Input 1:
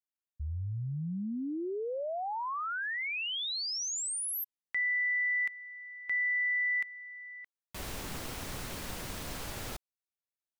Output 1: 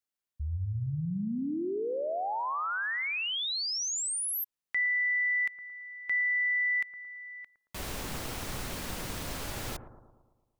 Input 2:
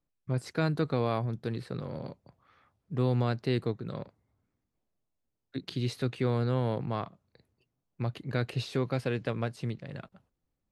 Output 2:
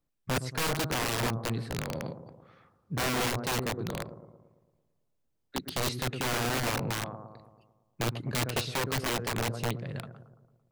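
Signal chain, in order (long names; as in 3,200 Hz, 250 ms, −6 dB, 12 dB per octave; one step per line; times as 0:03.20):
bucket-brigade delay 112 ms, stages 1,024, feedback 56%, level −11 dB
wrap-around overflow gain 26.5 dB
level +2.5 dB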